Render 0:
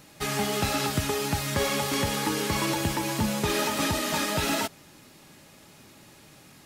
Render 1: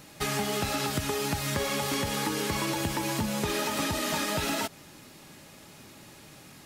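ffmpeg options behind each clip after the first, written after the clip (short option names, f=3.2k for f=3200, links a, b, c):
-af "acompressor=threshold=-28dB:ratio=6,volume=2dB"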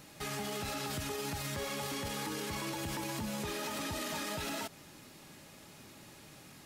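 -af "alimiter=level_in=1.5dB:limit=-24dB:level=0:latency=1:release=21,volume=-1.5dB,volume=-4dB"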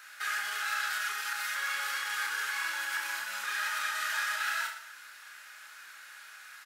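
-filter_complex "[0:a]highpass=f=1.5k:t=q:w=7.1,asplit=2[a][b];[b]aecho=0:1:30|67.5|114.4|173|246.2:0.631|0.398|0.251|0.158|0.1[c];[a][c]amix=inputs=2:normalize=0"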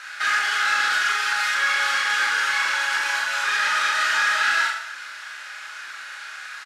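-filter_complex "[0:a]aeval=exprs='0.106*(cos(1*acos(clip(val(0)/0.106,-1,1)))-cos(1*PI/2))+0.015*(cos(5*acos(clip(val(0)/0.106,-1,1)))-cos(5*PI/2))':c=same,highpass=230,lowpass=6.3k,asplit=2[a][b];[b]adelay=41,volume=-5.5dB[c];[a][c]amix=inputs=2:normalize=0,volume=8dB"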